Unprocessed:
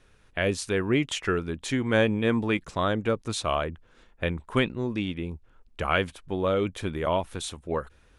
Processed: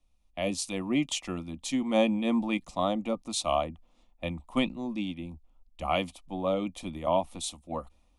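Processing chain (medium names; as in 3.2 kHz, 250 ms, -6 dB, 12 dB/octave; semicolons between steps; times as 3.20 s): static phaser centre 420 Hz, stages 6; small resonant body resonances 740/1200/2400 Hz, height 6 dB, ringing for 70 ms; three bands expanded up and down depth 40%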